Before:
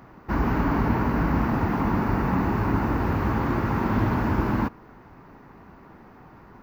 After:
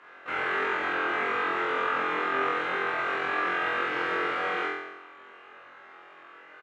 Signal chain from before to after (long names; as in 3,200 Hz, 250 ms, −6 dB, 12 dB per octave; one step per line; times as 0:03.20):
sub-octave generator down 1 octave, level −2 dB
high-pass filter 610 Hz 12 dB per octave
high-shelf EQ 2,700 Hz −11 dB
brickwall limiter −25 dBFS, peak gain reduction 5 dB
pitch shifter +6.5 semitones
high-frequency loss of the air 61 metres
double-tracking delay 48 ms −7 dB
flutter between parallel walls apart 3.9 metres, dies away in 0.93 s